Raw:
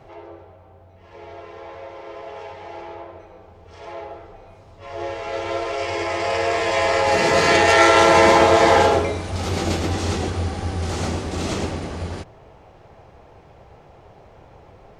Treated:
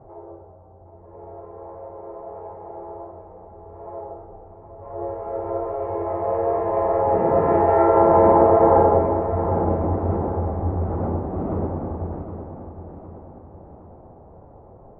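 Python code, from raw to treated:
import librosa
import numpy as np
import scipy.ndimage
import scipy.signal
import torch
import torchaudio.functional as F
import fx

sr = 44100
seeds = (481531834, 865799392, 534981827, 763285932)

y = scipy.signal.sosfilt(scipy.signal.butter(4, 1000.0, 'lowpass', fs=sr, output='sos'), x)
y = fx.echo_feedback(y, sr, ms=763, feedback_pct=47, wet_db=-10.0)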